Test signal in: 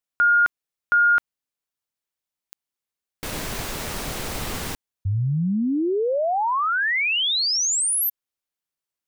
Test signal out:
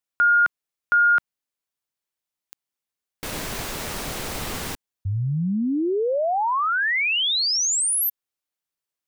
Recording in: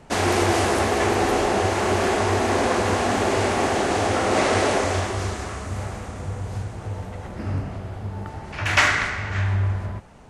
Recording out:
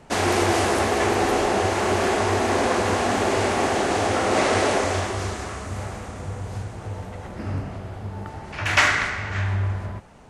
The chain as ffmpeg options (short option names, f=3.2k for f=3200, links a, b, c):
-af "lowshelf=f=140:g=-3"